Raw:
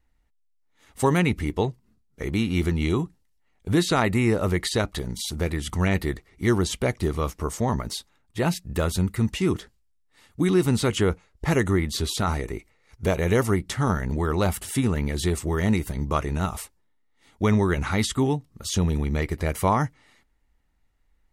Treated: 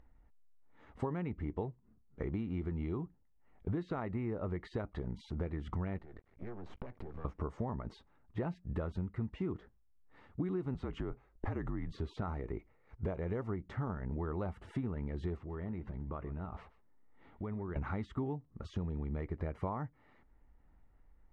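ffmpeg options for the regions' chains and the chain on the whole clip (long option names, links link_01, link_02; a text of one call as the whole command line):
ffmpeg -i in.wav -filter_complex "[0:a]asettb=1/sr,asplit=3[link_01][link_02][link_03];[link_01]atrim=end=5.984[link_04];[link_02]atrim=start=5.98:end=7.25,asetpts=PTS-STARTPTS,afade=type=in:duration=0.004:curve=qsin,afade=type=out:start_time=1.266:duration=0.004:curve=qsin,acompressor=threshold=-32dB:ratio=20:attack=3.2:release=140:knee=1:detection=peak,aeval=exprs='max(val(0),0)':channel_layout=same[link_05];[link_03]atrim=start=7.246[link_06];[link_04][link_05]acrossfade=duration=0.004:curve1=hsin:curve2=qsin[link_07];[link_07][link_06]acrossfade=duration=0.004:curve1=qsin:curve2=hsin,asettb=1/sr,asplit=3[link_08][link_09][link_10];[link_08]atrim=end=10.744[link_11];[link_09]atrim=start=10.74:end=11.92,asetpts=PTS-STARTPTS,afade=type=in:duration=0.004:curve=qsin,afade=type=out:start_time=1.176:duration=0.004:curve=qsin,acompressor=threshold=-21dB:ratio=6:attack=3.2:release=140:knee=1:detection=peak,afreqshift=-52[link_12];[link_10]atrim=start=11.916[link_13];[link_11][link_12]acrossfade=duration=0.004:curve1=hsin:curve2=qsin[link_14];[link_14][link_13]acrossfade=duration=0.004:curve1=qsin:curve2=hsin,asettb=1/sr,asplit=3[link_15][link_16][link_17];[link_15]atrim=end=15.374[link_18];[link_16]atrim=start=15.37:end=17.76,asetpts=PTS-STARTPTS,afade=type=in:duration=0.004:curve=qsin,afade=type=out:start_time=2.386:duration=0.004:curve=qsin,lowpass=4200,acompressor=threshold=-38dB:ratio=3:attack=3.2:release=140:knee=1:detection=peak,aecho=1:1:127:0.133,atrim=end_sample=105399[link_19];[link_17]atrim=start=17.756[link_20];[link_18][link_19]acrossfade=duration=0.004:curve1=hsin:curve2=qsin[link_21];[link_21][link_20]acrossfade=duration=0.004:curve1=qsin:curve2=hsin,acompressor=threshold=-31dB:ratio=8,lowpass=1300,acompressor=mode=upward:threshold=-51dB:ratio=2.5,volume=-2.5dB" out.wav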